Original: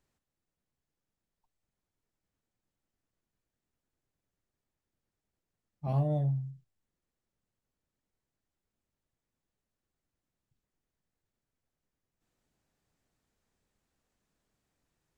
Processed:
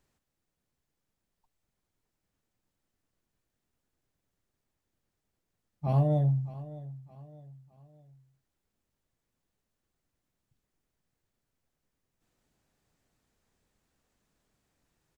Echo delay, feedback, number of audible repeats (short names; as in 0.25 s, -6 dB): 0.613 s, 40%, 3